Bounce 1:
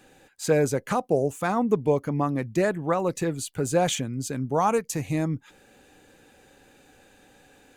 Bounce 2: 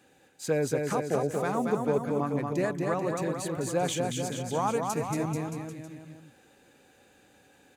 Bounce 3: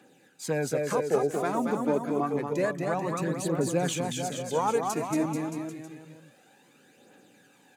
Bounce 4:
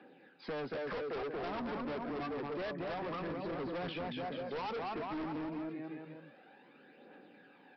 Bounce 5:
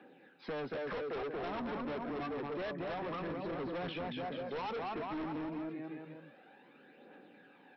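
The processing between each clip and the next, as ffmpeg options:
-filter_complex "[0:a]highpass=70,asplit=2[a][b];[b]aecho=0:1:230|437|623.3|791|941.9:0.631|0.398|0.251|0.158|0.1[c];[a][c]amix=inputs=2:normalize=0,volume=-6dB"
-af "highpass=f=150:w=0.5412,highpass=f=150:w=1.3066,lowshelf=f=200:g=3,aphaser=in_gain=1:out_gain=1:delay=3.6:decay=0.46:speed=0.28:type=triangular"
-filter_complex "[0:a]acrossover=split=160 3000:gain=0.0891 1 0.141[a][b][c];[a][b][c]amix=inputs=3:normalize=0,aresample=11025,volume=33dB,asoftclip=hard,volume=-33dB,aresample=44100,acompressor=threshold=-39dB:ratio=6,volume=1dB"
-af "bandreject=f=4.7k:w=7.5"

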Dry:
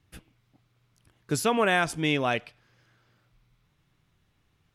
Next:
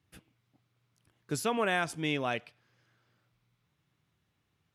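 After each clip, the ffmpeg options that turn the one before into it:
-af "highpass=82,volume=-6dB"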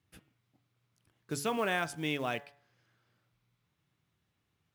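-af "bandreject=f=142.4:t=h:w=4,bandreject=f=284.8:t=h:w=4,bandreject=f=427.2:t=h:w=4,bandreject=f=569.6:t=h:w=4,bandreject=f=712:t=h:w=4,bandreject=f=854.4:t=h:w=4,bandreject=f=996.8:t=h:w=4,bandreject=f=1.1392k:t=h:w=4,bandreject=f=1.2816k:t=h:w=4,bandreject=f=1.424k:t=h:w=4,bandreject=f=1.5664k:t=h:w=4,bandreject=f=1.7088k:t=h:w=4,bandreject=f=1.8512k:t=h:w=4,bandreject=f=1.9936k:t=h:w=4,acrusher=bits=6:mode=log:mix=0:aa=0.000001,volume=-2dB"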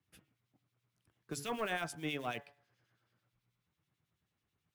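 -filter_complex "[0:a]acrossover=split=120|1200[a][b][c];[b]volume=29.5dB,asoftclip=hard,volume=-29.5dB[d];[a][d][c]amix=inputs=3:normalize=0,acrossover=split=2100[e][f];[e]aeval=exprs='val(0)*(1-0.7/2+0.7/2*cos(2*PI*9.2*n/s))':c=same[g];[f]aeval=exprs='val(0)*(1-0.7/2-0.7/2*cos(2*PI*9.2*n/s))':c=same[h];[g][h]amix=inputs=2:normalize=0,volume=-1.5dB"

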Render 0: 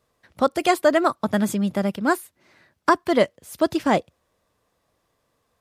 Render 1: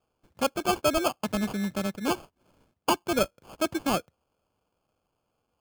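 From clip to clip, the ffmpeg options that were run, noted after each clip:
-af "acrusher=samples=23:mix=1:aa=0.000001,volume=-7dB"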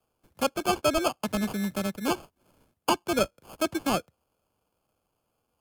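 -filter_complex "[0:a]equalizer=f=12k:t=o:w=0.75:g=9,acrossover=split=140|640|7900[a][b][c][d];[d]acompressor=threshold=-41dB:ratio=6[e];[a][b][c][e]amix=inputs=4:normalize=0"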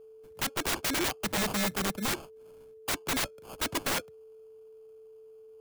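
-af "aeval=exprs='(mod(17.8*val(0)+1,2)-1)/17.8':c=same,aeval=exprs='val(0)+0.00316*sin(2*PI*440*n/s)':c=same,volume=1dB"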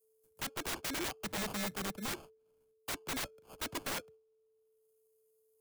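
-filter_complex "[0:a]agate=range=-33dB:threshold=-43dB:ratio=3:detection=peak,acrossover=split=480|7200[a][b][c];[c]acompressor=mode=upward:threshold=-50dB:ratio=2.5[d];[a][b][d]amix=inputs=3:normalize=0,volume=-8dB"

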